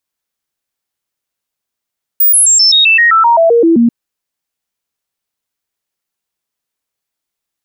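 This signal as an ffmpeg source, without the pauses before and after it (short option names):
-f lavfi -i "aevalsrc='0.596*clip(min(mod(t,0.13),0.13-mod(t,0.13))/0.005,0,1)*sin(2*PI*15000*pow(2,-floor(t/0.13)/2)*mod(t,0.13))':d=1.69:s=44100"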